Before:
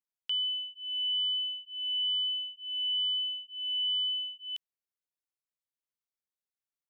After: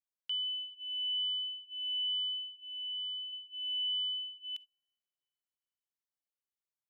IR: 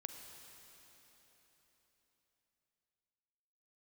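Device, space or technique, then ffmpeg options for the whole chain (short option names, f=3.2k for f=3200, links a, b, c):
keyed gated reverb: -filter_complex "[0:a]asplit=3[a][b][c];[1:a]atrim=start_sample=2205[d];[b][d]afir=irnorm=-1:irlink=0[e];[c]apad=whole_len=304232[f];[e][f]sidechaingate=range=-33dB:threshold=-45dB:ratio=16:detection=peak,volume=-3dB[g];[a][g]amix=inputs=2:normalize=0,asettb=1/sr,asplit=3[h][i][j];[h]atrim=end=2.604[k];[i]atrim=start=2.6:end=3.33,asetpts=PTS-STARTPTS,afade=t=in:d=0.004:c=qsin,afade=t=out:st=0.726:d=0.004:c=qsin,equalizer=f=2.8k:w=1.5:g=-5[l];[j]atrim=start=3.326[m];[k][l]acrossfade=d=0.004:c1=hsin:c2=qsin[n];[n][m]acrossfade=d=0.004:c1=qsin:c2=hsin,volume=-7dB"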